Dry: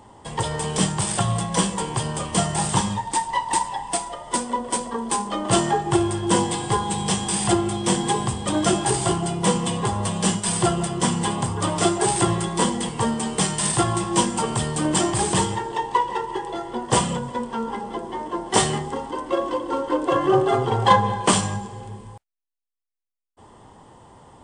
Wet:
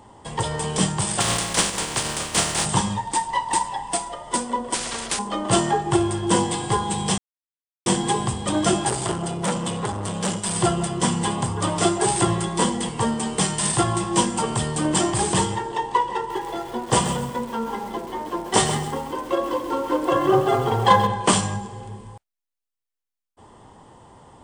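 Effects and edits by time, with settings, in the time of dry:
1.19–2.64 spectral contrast lowered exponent 0.38
4.74–5.19 spectral compressor 4:1
7.18–7.86 mute
8.89–10.56 core saturation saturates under 1200 Hz
16.17–21.07 lo-fi delay 0.131 s, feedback 35%, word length 6-bit, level -9.5 dB

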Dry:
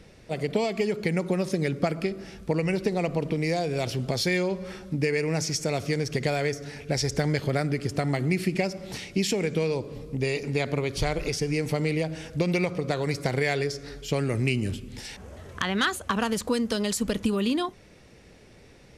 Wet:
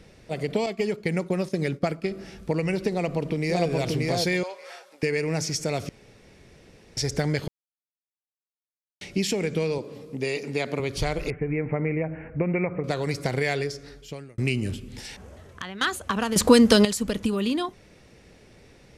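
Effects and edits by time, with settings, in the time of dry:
0.66–2.05 expander -28 dBFS
2.91–3.66 echo throw 0.58 s, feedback 15%, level -1.5 dB
4.43–5.03 HPF 610 Hz 24 dB/oct
5.89–6.97 room tone
7.48–9.01 mute
9.78–10.8 HPF 180 Hz
11.3–12.84 steep low-pass 2400 Hz 72 dB/oct
13.56–14.38 fade out
15.13–15.81 fade out linear, to -13.5 dB
16.36–16.85 gain +11 dB

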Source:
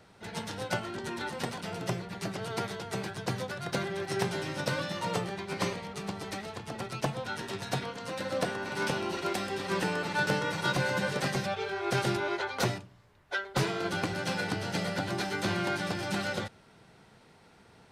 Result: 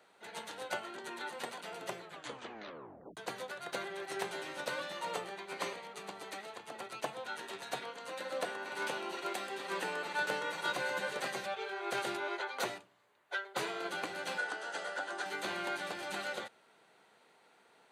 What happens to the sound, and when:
1.98 tape stop 1.19 s
14.38–15.26 speaker cabinet 380–9300 Hz, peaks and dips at 1500 Hz +6 dB, 2300 Hz -8 dB, 4100 Hz -5 dB
whole clip: HPF 420 Hz 12 dB/oct; bell 5300 Hz -11.5 dB 0.2 oct; gain -4.5 dB

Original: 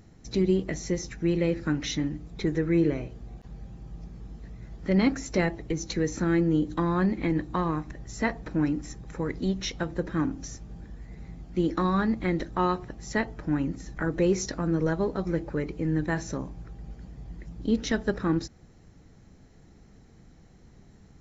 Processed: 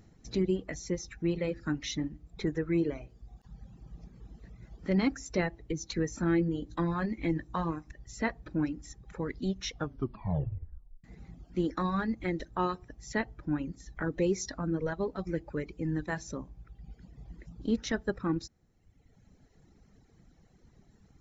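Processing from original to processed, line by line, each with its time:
5.94–7.74 doubler 18 ms -9 dB
9.71 tape stop 1.33 s
whole clip: reverb removal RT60 1.3 s; gain -4 dB

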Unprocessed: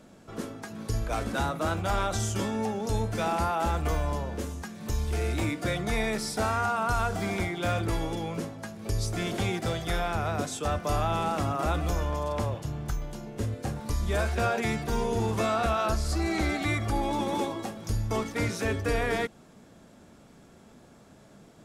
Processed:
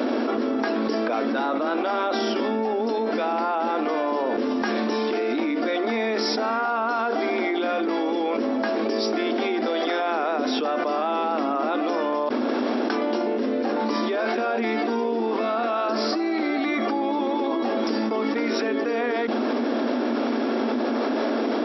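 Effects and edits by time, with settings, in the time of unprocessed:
12.29–12.9 room tone
whole clip: tilt -2 dB/oct; FFT band-pass 220–5700 Hz; fast leveller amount 100%

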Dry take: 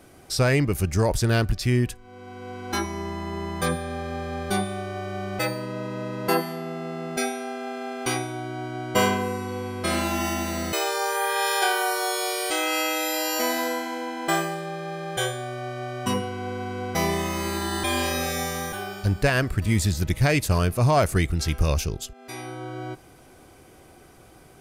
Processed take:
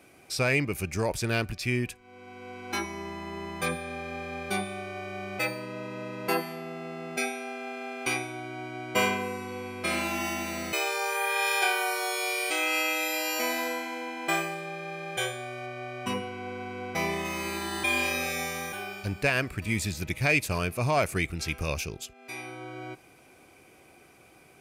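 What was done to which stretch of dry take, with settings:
15.66–17.25 high shelf 4500 Hz -5 dB
whole clip: HPF 160 Hz 6 dB/oct; bell 2400 Hz +12 dB 0.27 oct; gain -5 dB

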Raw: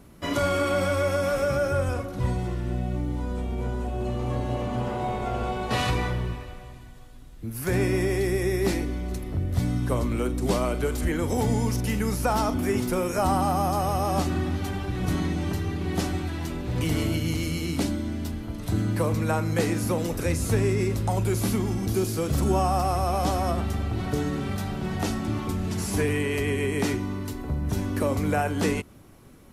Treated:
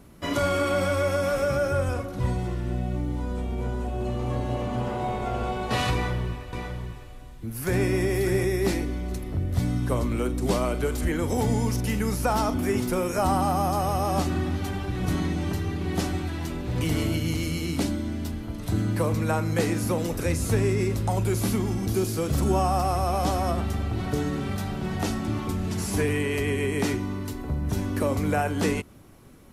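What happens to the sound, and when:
5.93–8.45 echo 0.597 s -7 dB

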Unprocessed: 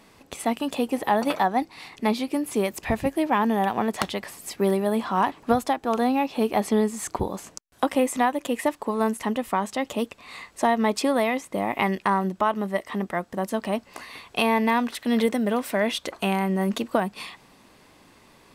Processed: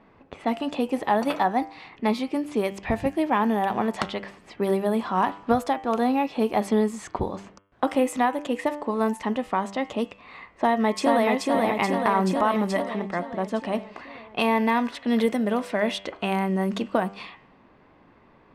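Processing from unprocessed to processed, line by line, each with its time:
10.52–11.27 echo throw 0.43 s, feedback 65%, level -2 dB
12.05–12.82 fast leveller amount 50%
whole clip: low-pass opened by the level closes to 1800 Hz, open at -19 dBFS; high shelf 4500 Hz -5.5 dB; de-hum 98.37 Hz, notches 34

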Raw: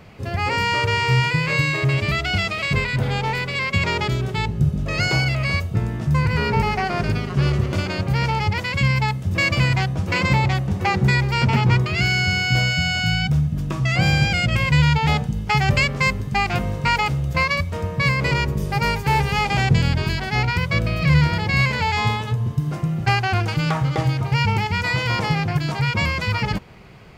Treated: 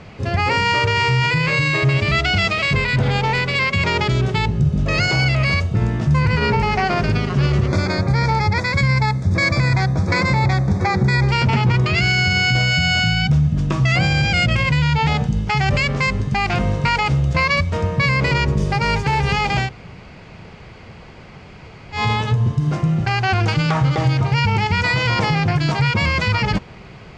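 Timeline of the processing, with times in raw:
7.67–11.28 Butterworth band-stop 2900 Hz, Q 2.6
19.64–21.99 room tone, crossfade 0.16 s
whole clip: limiter -14 dBFS; LPF 7400 Hz 24 dB/oct; gain +5.5 dB

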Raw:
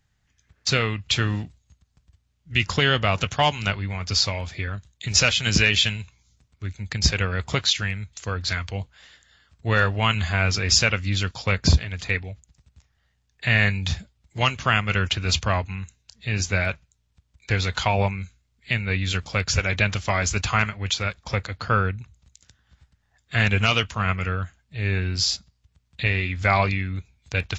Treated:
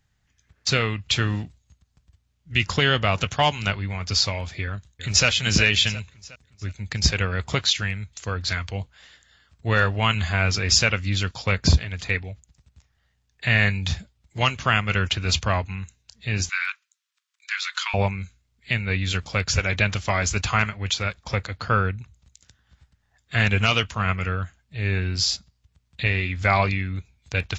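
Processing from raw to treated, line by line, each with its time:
4.63–5.27 echo throw 0.36 s, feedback 45%, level -11 dB
16.49–17.94 steep high-pass 1100 Hz 48 dB/oct

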